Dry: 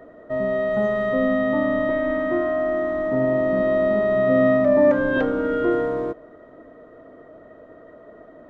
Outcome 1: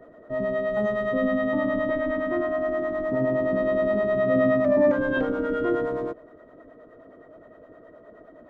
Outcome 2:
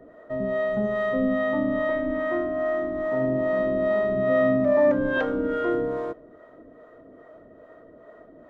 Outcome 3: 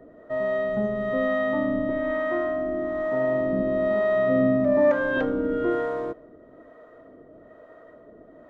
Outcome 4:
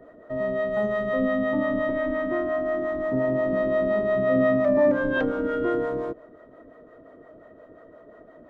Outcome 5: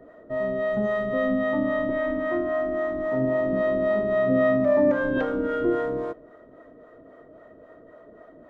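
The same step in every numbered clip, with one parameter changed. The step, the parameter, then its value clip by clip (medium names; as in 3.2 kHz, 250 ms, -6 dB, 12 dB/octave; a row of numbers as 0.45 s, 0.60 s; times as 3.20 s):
harmonic tremolo, rate: 9.6 Hz, 2.4 Hz, 1.1 Hz, 5.7 Hz, 3.7 Hz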